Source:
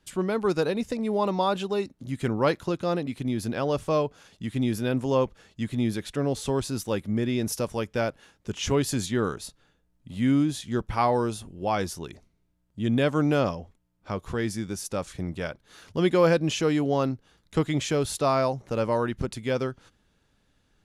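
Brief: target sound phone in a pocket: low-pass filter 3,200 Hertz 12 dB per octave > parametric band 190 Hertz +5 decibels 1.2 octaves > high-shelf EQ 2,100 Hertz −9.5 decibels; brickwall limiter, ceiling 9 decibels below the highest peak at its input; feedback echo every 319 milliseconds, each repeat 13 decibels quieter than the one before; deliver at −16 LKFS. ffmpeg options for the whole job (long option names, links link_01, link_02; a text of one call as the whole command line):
ffmpeg -i in.wav -af "alimiter=limit=-17.5dB:level=0:latency=1,lowpass=3200,equalizer=frequency=190:width_type=o:width=1.2:gain=5,highshelf=frequency=2100:gain=-9.5,aecho=1:1:319|638|957:0.224|0.0493|0.0108,volume=11.5dB" out.wav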